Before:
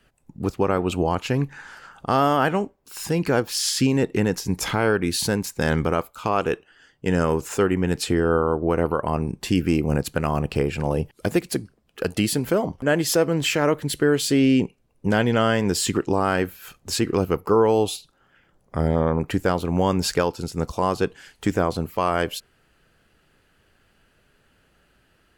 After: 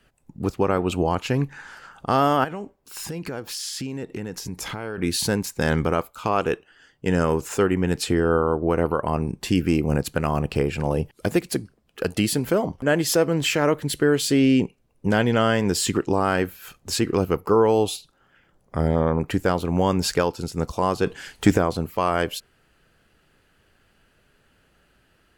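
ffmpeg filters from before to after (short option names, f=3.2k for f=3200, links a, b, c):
-filter_complex "[0:a]asettb=1/sr,asplit=3[a][b][c];[a]atrim=end=2.444[d];[b]atrim=start=2.44:end=4.98,asetpts=PTS-STARTPTS,afade=t=in:d=0.004:c=qsin,afade=t=out:st=2.536:d=0.004:c=qsin,acompressor=threshold=-29dB:ratio=4:attack=3.2:release=140:knee=1:detection=peak[e];[c]atrim=start=4.976[f];[d][e]acrossfade=d=0.004:c1=hsin:c2=qsin[g];[g][f]acrossfade=d=0.004:c1=qsin:c2=hsin,asettb=1/sr,asplit=3[h][i][j];[h]atrim=end=21.064[k];[i]atrim=start=21.06:end=21.58,asetpts=PTS-STARTPTS,afade=t=in:d=0.004:c=qsin,afade=t=out:st=0.516:d=0.004:c=qsin,acontrast=84[l];[j]atrim=start=21.576[m];[k][l]acrossfade=d=0.004:c1=hsin:c2=qsin[n];[n][m]acrossfade=d=0.004:c1=qsin:c2=hsin"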